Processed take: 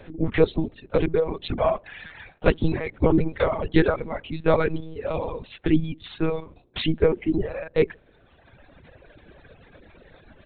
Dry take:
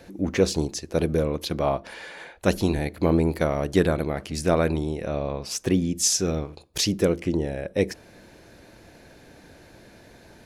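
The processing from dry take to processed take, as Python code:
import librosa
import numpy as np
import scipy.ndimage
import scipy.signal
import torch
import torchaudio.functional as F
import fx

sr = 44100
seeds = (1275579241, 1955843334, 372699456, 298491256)

y = fx.echo_filtered(x, sr, ms=142, feedback_pct=53, hz=830.0, wet_db=-23.5)
y = fx.lpc_monotone(y, sr, seeds[0], pitch_hz=160.0, order=8)
y = fx.dereverb_blind(y, sr, rt60_s=1.5)
y = y * librosa.db_to_amplitude(3.0)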